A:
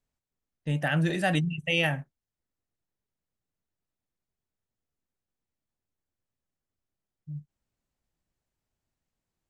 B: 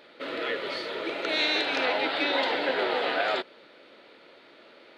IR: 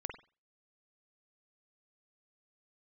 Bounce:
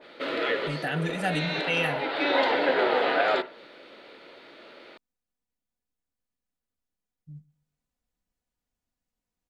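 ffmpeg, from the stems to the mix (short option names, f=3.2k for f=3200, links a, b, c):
-filter_complex "[0:a]aecho=1:1:4.1:0.51,volume=-3dB,asplit=3[a][b][c];[b]volume=-22.5dB[d];[1:a]adynamicequalizer=threshold=0.00891:dfrequency=2300:dqfactor=0.7:tfrequency=2300:tqfactor=0.7:attack=5:release=100:ratio=0.375:range=3:mode=cutabove:tftype=highshelf,volume=1.5dB,asplit=2[e][f];[f]volume=-7dB[g];[c]apad=whole_len=219378[h];[e][h]sidechaincompress=threshold=-40dB:ratio=8:attack=35:release=390[i];[2:a]atrim=start_sample=2205[j];[g][j]afir=irnorm=-1:irlink=0[k];[d]aecho=0:1:126|252|378|504:1|0.28|0.0784|0.022[l];[a][i][k][l]amix=inputs=4:normalize=0"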